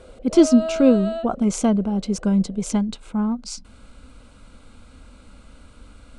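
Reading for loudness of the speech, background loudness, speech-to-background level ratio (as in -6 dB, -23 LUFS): -20.5 LUFS, -29.0 LUFS, 8.5 dB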